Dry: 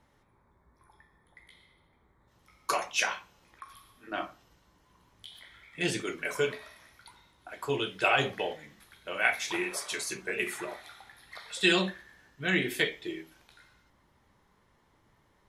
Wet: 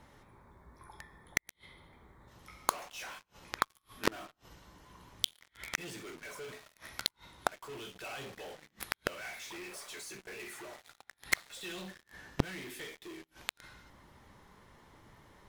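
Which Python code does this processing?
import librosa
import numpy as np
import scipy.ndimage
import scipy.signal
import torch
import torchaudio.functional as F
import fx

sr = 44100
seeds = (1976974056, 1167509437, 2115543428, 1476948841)

p1 = fx.fuzz(x, sr, gain_db=50.0, gate_db=-46.0)
p2 = x + (p1 * 10.0 ** (-5.0 / 20.0))
p3 = fx.gate_flip(p2, sr, shuts_db=-19.0, range_db=-35)
y = p3 * 10.0 ** (8.0 / 20.0)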